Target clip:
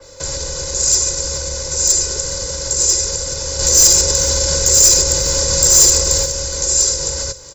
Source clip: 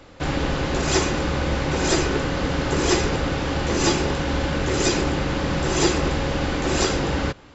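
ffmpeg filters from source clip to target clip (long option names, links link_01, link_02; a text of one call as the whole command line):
ffmpeg -i in.wav -filter_complex "[0:a]equalizer=frequency=530:width_type=o:width=0.24:gain=8.5,aecho=1:1:2:0.7,acrossover=split=100|370|6000[link_01][link_02][link_03][link_04];[link_01]acompressor=threshold=-24dB:ratio=4[link_05];[link_02]acompressor=threshold=-36dB:ratio=4[link_06];[link_03]acompressor=threshold=-28dB:ratio=4[link_07];[link_04]acompressor=threshold=-37dB:ratio=4[link_08];[link_05][link_06][link_07][link_08]amix=inputs=4:normalize=0,alimiter=limit=-18dB:level=0:latency=1:release=53,asettb=1/sr,asplit=3[link_09][link_10][link_11];[link_09]atrim=end=3.594[link_12];[link_10]atrim=start=3.59:end=6.26,asetpts=PTS-STARTPTS,afade=type=in:duration=0.004:curve=qsin,afade=type=out:start_time=2.666:duration=0.004:curve=qsin,acontrast=58[link_13];[link_11]atrim=start=6.256[link_14];[link_12][link_13]acrossfade=duration=0.004:curve1=hsin:curve2=qsin[link_15];[link_15][link_14]acrossfade=duration=0.004:curve1=qsin:curve2=hsin,aexciter=amount=12.1:drive=4.5:freq=4500,volume=8dB,asoftclip=hard,volume=-8dB,aecho=1:1:418:0.133,adynamicequalizer=threshold=0.0447:dfrequency=4000:dqfactor=0.7:tfrequency=4000:tqfactor=0.7:attack=5:release=100:ratio=0.375:range=2.5:mode=boostabove:tftype=highshelf,volume=-1dB" out.wav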